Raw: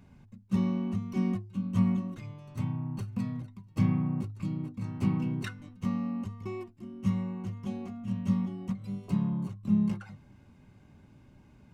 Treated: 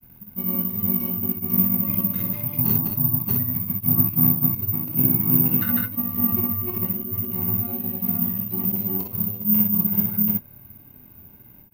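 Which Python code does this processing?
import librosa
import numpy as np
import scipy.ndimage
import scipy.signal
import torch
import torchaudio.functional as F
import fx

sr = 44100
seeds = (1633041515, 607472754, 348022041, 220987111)

p1 = fx.auto_swell(x, sr, attack_ms=240.0)
p2 = fx.rider(p1, sr, range_db=10, speed_s=2.0)
p3 = fx.granulator(p2, sr, seeds[0], grain_ms=100.0, per_s=20.0, spray_ms=389.0, spread_st=0)
p4 = p3 + fx.room_early_taps(p3, sr, ms=(24, 53, 63), db=(-7.0, -7.0, -5.5), dry=0)
p5 = (np.kron(scipy.signal.resample_poly(p4, 1, 3), np.eye(3)[0]) * 3)[:len(p4)]
y = F.gain(torch.from_numpy(p5), 7.0).numpy()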